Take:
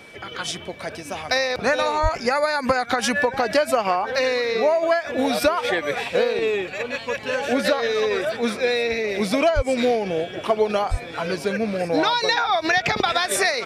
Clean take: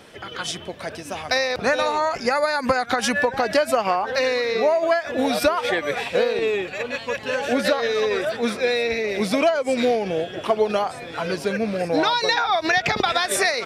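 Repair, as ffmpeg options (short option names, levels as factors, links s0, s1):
-filter_complex "[0:a]bandreject=f=2300:w=30,asplit=3[s0][s1][s2];[s0]afade=t=out:st=2.02:d=0.02[s3];[s1]highpass=f=140:w=0.5412,highpass=f=140:w=1.3066,afade=t=in:st=2.02:d=0.02,afade=t=out:st=2.14:d=0.02[s4];[s2]afade=t=in:st=2.14:d=0.02[s5];[s3][s4][s5]amix=inputs=3:normalize=0,asplit=3[s6][s7][s8];[s6]afade=t=out:st=9.55:d=0.02[s9];[s7]highpass=f=140:w=0.5412,highpass=f=140:w=1.3066,afade=t=in:st=9.55:d=0.02,afade=t=out:st=9.67:d=0.02[s10];[s8]afade=t=in:st=9.67:d=0.02[s11];[s9][s10][s11]amix=inputs=3:normalize=0,asplit=3[s12][s13][s14];[s12]afade=t=out:st=10.9:d=0.02[s15];[s13]highpass=f=140:w=0.5412,highpass=f=140:w=1.3066,afade=t=in:st=10.9:d=0.02,afade=t=out:st=11.02:d=0.02[s16];[s14]afade=t=in:st=11.02:d=0.02[s17];[s15][s16][s17]amix=inputs=3:normalize=0"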